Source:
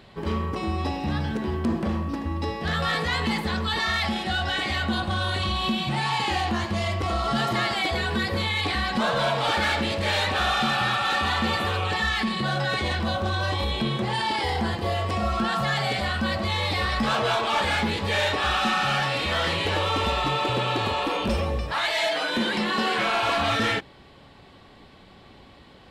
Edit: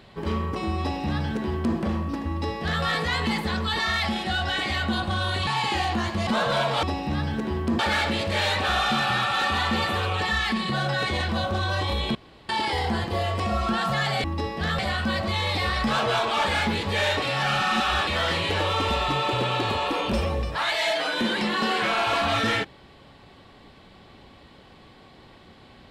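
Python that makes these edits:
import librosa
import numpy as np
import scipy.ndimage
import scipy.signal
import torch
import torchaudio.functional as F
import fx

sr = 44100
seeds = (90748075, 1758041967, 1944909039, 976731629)

y = fx.edit(x, sr, fx.duplicate(start_s=0.8, length_s=0.96, to_s=9.5),
    fx.duplicate(start_s=2.28, length_s=0.55, to_s=15.95),
    fx.cut(start_s=5.47, length_s=0.56),
    fx.cut(start_s=6.83, length_s=2.11),
    fx.room_tone_fill(start_s=13.86, length_s=0.34),
    fx.reverse_span(start_s=18.38, length_s=0.85), tone=tone)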